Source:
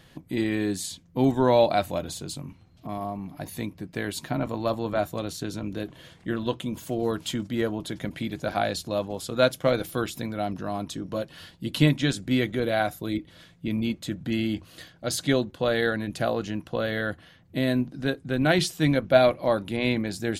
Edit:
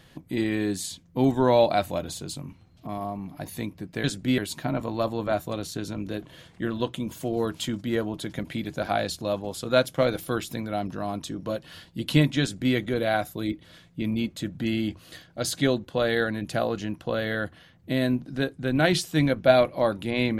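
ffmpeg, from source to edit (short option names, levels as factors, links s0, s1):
-filter_complex "[0:a]asplit=3[s0][s1][s2];[s0]atrim=end=4.042[s3];[s1]atrim=start=12.068:end=12.412[s4];[s2]atrim=start=4.038[s5];[s3][s4]acrossfade=d=0.004:c1=hsin:c2=hsin[s6];[s6][s5]acrossfade=d=0.004:c1=hsin:c2=hsin"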